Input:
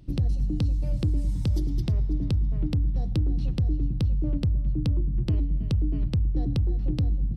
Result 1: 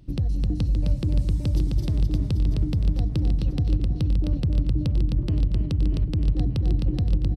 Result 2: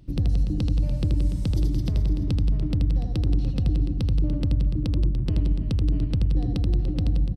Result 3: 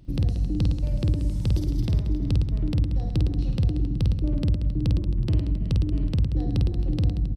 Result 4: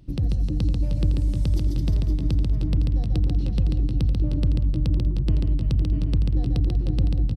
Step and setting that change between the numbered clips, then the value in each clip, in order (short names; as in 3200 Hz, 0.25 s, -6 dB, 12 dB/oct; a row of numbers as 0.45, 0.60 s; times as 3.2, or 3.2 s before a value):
reverse bouncing-ball echo, first gap: 260, 80, 50, 140 ms